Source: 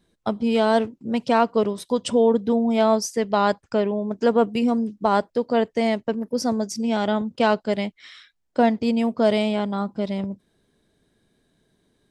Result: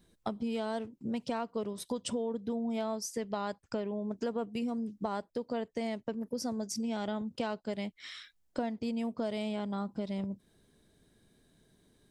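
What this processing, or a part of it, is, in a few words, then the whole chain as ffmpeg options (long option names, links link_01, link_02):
ASMR close-microphone chain: -af "lowshelf=frequency=200:gain=4.5,acompressor=threshold=-32dB:ratio=4,highshelf=frequency=6600:gain=7.5,volume=-2.5dB"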